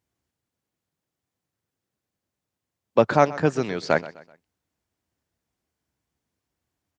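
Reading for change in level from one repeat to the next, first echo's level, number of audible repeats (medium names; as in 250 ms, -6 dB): -8.0 dB, -18.0 dB, 3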